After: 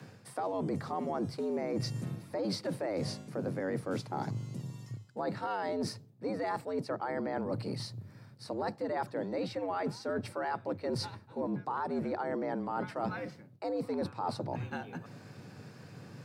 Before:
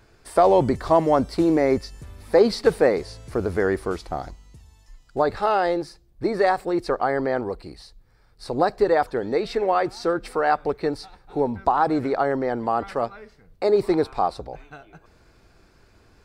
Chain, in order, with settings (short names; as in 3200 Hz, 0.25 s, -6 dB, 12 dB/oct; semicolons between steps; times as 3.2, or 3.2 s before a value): octaver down 1 oct, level +2 dB; limiter -12.5 dBFS, peak gain reduction 8.5 dB; frequency shift +91 Hz; reverse; compressor 6:1, threshold -36 dBFS, peak gain reduction 18.5 dB; reverse; gain +3 dB